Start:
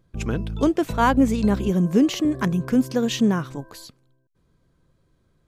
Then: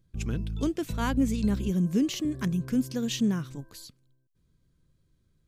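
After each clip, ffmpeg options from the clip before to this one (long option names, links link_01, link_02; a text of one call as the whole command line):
ffmpeg -i in.wav -af "equalizer=frequency=790:width=0.5:gain=-12.5,volume=-2.5dB" out.wav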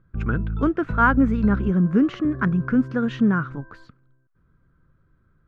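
ffmpeg -i in.wav -af "lowpass=frequency=1400:width_type=q:width=5.4,volume=6.5dB" out.wav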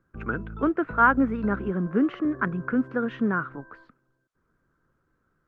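ffmpeg -i in.wav -filter_complex "[0:a]acrossover=split=270 2800:gain=0.224 1 0.2[link_01][link_02][link_03];[link_01][link_02][link_03]amix=inputs=3:normalize=0" -ar 48000 -c:a libopus -b:a 32k out.opus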